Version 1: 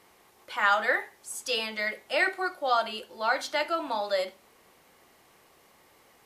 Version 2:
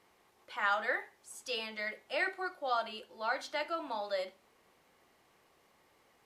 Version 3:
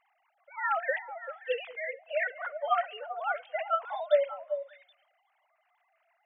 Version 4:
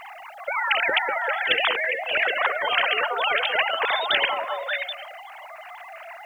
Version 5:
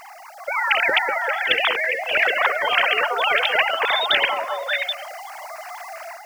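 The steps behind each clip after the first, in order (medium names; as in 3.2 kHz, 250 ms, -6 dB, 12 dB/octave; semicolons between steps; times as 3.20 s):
treble shelf 8.5 kHz -8 dB; trim -7.5 dB
formants replaced by sine waves; repeats whose band climbs or falls 194 ms, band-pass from 260 Hz, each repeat 1.4 oct, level -6 dB; trim +4.5 dB
spectrum-flattening compressor 10:1; trim +6 dB
dynamic bell 2.5 kHz, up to +6 dB, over -36 dBFS, Q 1.6; level rider gain up to 6.5 dB; resonant high shelf 3.8 kHz +9 dB, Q 3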